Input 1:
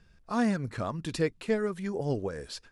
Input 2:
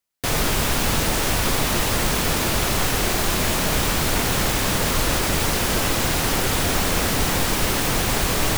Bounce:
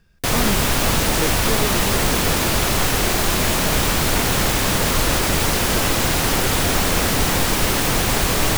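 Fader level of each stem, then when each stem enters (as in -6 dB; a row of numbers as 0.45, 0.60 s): +2.0, +2.5 dB; 0.00, 0.00 s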